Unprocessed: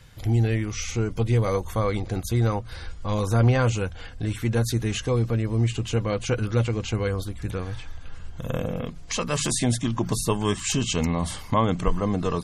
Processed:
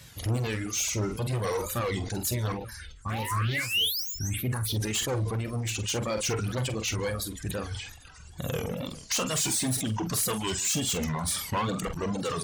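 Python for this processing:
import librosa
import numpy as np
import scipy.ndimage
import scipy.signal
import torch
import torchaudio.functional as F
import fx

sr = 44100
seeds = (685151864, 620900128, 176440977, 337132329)

y = fx.spec_paint(x, sr, seeds[0], shape='rise', start_s=3.09, length_s=1.06, low_hz=620.0, high_hz=7200.0, level_db=-23.0)
y = fx.high_shelf(y, sr, hz=3800.0, db=11.5)
y = y + 10.0 ** (-16.0 / 20.0) * np.pad(y, (int(146 * sr / 1000.0), 0))[:len(y)]
y = np.clip(y, -10.0 ** (-24.5 / 20.0), 10.0 ** (-24.5 / 20.0))
y = scipy.signal.sosfilt(scipy.signal.butter(2, 58.0, 'highpass', fs=sr, output='sos'), y)
y = fx.wow_flutter(y, sr, seeds[1], rate_hz=2.1, depth_cents=130.0)
y = fx.dereverb_blind(y, sr, rt60_s=1.8)
y = fx.phaser_stages(y, sr, stages=4, low_hz=470.0, high_hz=1500.0, hz=3.3, feedback_pct=35, at=(2.52, 4.76))
y = fx.doubler(y, sr, ms=46.0, db=-11.0)
y = fx.sustainer(y, sr, db_per_s=71.0)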